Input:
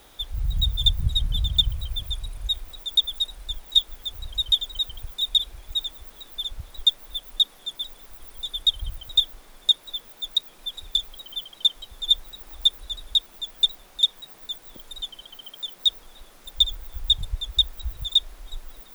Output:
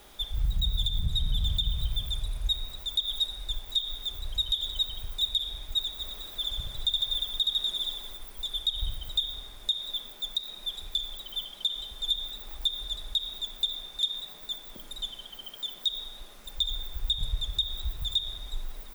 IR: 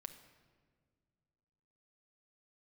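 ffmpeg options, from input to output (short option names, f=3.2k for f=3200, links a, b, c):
-filter_complex "[0:a]asplit=3[a][b][c];[a]afade=t=out:st=5.97:d=0.02[d];[b]aecho=1:1:70|150.5|243.1|349.5|472:0.631|0.398|0.251|0.158|0.1,afade=t=in:st=5.97:d=0.02,afade=t=out:st=8.16:d=0.02[e];[c]afade=t=in:st=8.16:d=0.02[f];[d][e][f]amix=inputs=3:normalize=0[g];[1:a]atrim=start_sample=2205,asetrate=52920,aresample=44100[h];[g][h]afir=irnorm=-1:irlink=0,alimiter=limit=-24dB:level=0:latency=1:release=121,volume=6dB"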